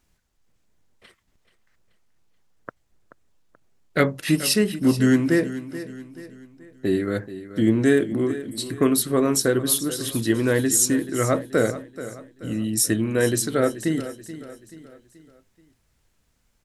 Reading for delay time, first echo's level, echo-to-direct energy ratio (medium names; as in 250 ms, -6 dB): 431 ms, -14.0 dB, -13.0 dB